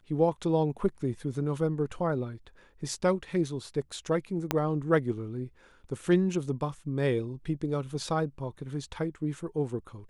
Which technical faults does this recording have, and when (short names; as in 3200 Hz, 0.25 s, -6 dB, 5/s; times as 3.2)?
4.51 pop -10 dBFS